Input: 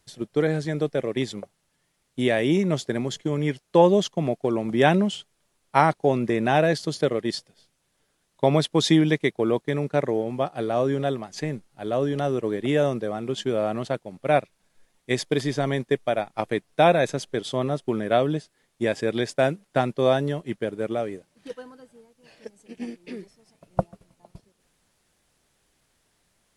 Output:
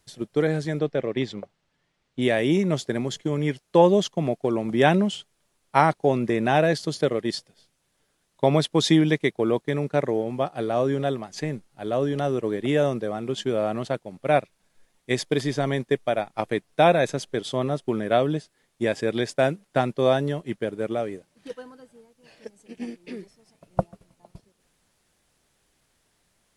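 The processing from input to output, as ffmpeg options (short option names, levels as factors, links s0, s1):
-filter_complex "[0:a]asettb=1/sr,asplit=3[s0][s1][s2];[s0]atrim=end=0.794[s3];[s1]atrim=start=0.79:end=2.22,asetpts=PTS-STARTPTS,afade=t=in:d=0.004:c=qsin,afade=t=out:st=1.426:d=0.004:c=qsin,lowpass=4500[s4];[s2]atrim=start=2.216[s5];[s3][s4]acrossfade=d=0.004:c1=hsin:c2=qsin[s6];[s6][s5]acrossfade=d=0.004:c1=qsin:c2=hsin"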